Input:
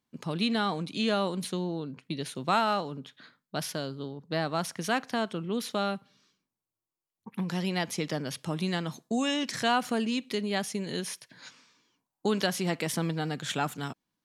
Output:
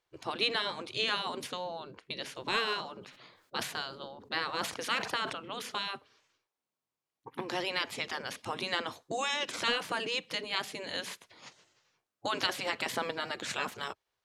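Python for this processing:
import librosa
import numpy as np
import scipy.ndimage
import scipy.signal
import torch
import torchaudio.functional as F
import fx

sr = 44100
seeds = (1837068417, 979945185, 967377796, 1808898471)

y = fx.spec_gate(x, sr, threshold_db=-10, keep='weak')
y = fx.high_shelf(y, sr, hz=7000.0, db=-12.0)
y = fx.sustainer(y, sr, db_per_s=81.0, at=(2.96, 5.33))
y = y * librosa.db_to_amplitude(5.0)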